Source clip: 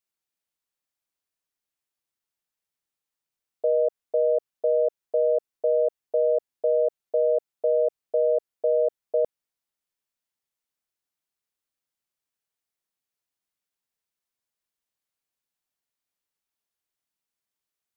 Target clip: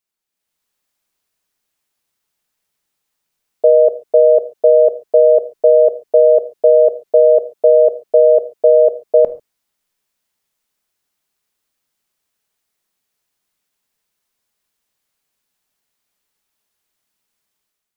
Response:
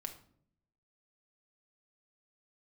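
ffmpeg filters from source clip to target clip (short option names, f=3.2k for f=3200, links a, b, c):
-filter_complex "[0:a]dynaudnorm=f=130:g=7:m=9dB,asplit=2[a][b];[1:a]atrim=start_sample=2205,atrim=end_sample=6615[c];[b][c]afir=irnorm=-1:irlink=0,volume=1.5dB[d];[a][d]amix=inputs=2:normalize=0,volume=-1dB"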